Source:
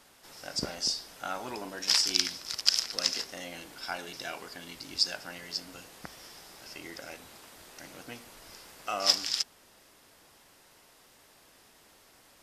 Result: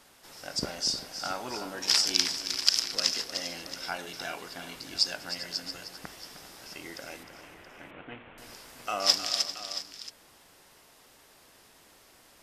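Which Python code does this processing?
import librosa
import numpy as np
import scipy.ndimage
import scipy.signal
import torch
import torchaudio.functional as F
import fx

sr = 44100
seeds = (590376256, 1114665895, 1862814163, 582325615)

y = fx.cvsd(x, sr, bps=16000, at=(7.23, 8.38))
y = fx.echo_multitap(y, sr, ms=(309, 397, 676), db=(-11.0, -15.5, -14.0))
y = y * 10.0 ** (1.0 / 20.0)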